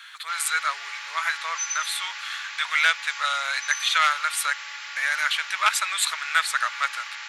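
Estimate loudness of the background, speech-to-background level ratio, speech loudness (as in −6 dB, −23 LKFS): −33.5 LKFS, 9.0 dB, −24.5 LKFS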